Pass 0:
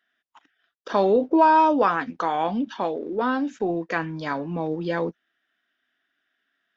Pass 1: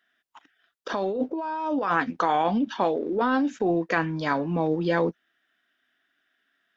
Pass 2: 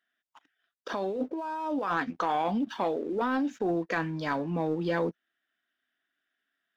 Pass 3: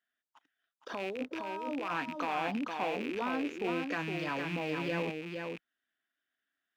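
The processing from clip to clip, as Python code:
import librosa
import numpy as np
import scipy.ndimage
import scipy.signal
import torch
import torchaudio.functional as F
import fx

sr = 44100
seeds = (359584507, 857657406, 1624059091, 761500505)

y1 = fx.over_compress(x, sr, threshold_db=-24.0, ratio=-1.0)
y2 = fx.leveller(y1, sr, passes=1)
y2 = F.gain(torch.from_numpy(y2), -8.0).numpy()
y3 = fx.rattle_buzz(y2, sr, strikes_db=-45.0, level_db=-24.0)
y3 = scipy.signal.sosfilt(scipy.signal.butter(2, 43.0, 'highpass', fs=sr, output='sos'), y3)
y3 = y3 + 10.0 ** (-5.0 / 20.0) * np.pad(y3, (int(463 * sr / 1000.0), 0))[:len(y3)]
y3 = F.gain(torch.from_numpy(y3), -6.5).numpy()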